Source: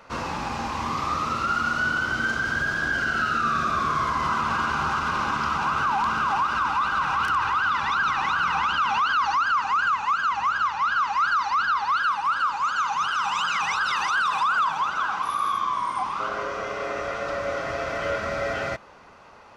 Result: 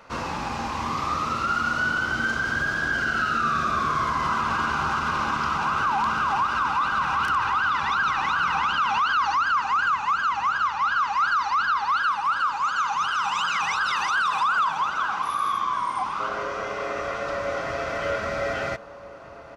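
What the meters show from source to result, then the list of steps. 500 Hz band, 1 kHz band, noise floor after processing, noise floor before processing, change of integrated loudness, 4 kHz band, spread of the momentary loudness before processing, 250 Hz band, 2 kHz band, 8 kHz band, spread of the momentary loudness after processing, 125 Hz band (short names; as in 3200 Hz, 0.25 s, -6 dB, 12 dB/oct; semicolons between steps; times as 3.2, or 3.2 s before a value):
0.0 dB, 0.0 dB, -31 dBFS, -32 dBFS, 0.0 dB, 0.0 dB, 7 LU, 0.0 dB, 0.0 dB, 0.0 dB, 7 LU, 0.0 dB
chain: outdoor echo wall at 270 m, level -13 dB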